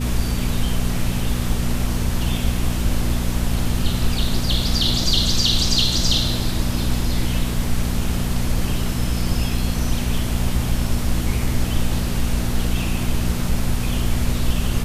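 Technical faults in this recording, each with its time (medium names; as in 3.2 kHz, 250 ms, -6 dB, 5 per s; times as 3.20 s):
hum 60 Hz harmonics 4 -24 dBFS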